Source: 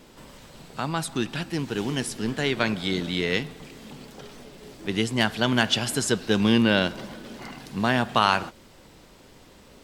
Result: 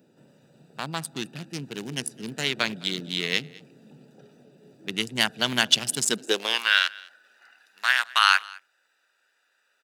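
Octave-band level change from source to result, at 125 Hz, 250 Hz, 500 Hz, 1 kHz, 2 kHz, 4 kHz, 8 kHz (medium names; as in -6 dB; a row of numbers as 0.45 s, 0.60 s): -9.5 dB, -10.5 dB, -7.0 dB, -1.5 dB, +3.0 dB, +4.0 dB, +3.5 dB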